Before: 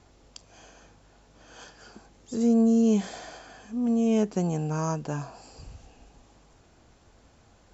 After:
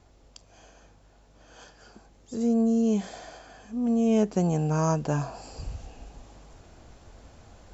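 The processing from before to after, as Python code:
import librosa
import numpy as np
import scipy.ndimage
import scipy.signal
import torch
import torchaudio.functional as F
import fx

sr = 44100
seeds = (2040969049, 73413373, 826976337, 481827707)

y = fx.peak_eq(x, sr, hz=620.0, db=3.0, octaves=0.77)
y = fx.rider(y, sr, range_db=10, speed_s=2.0)
y = fx.low_shelf(y, sr, hz=85.0, db=7.5)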